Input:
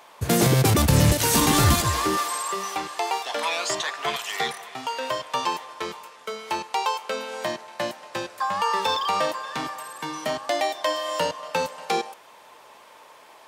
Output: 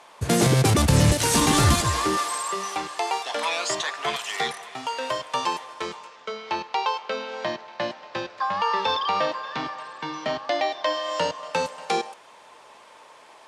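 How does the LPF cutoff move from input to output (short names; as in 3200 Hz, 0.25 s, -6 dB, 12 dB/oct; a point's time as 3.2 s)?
LPF 24 dB/oct
5.71 s 11000 Hz
6.37 s 5100 Hz
10.78 s 5100 Hz
11.64 s 10000 Hz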